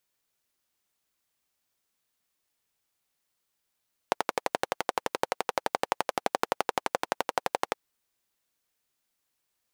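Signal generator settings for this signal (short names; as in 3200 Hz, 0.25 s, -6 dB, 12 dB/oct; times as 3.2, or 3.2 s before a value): single-cylinder engine model, steady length 3.62 s, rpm 1400, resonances 530/760 Hz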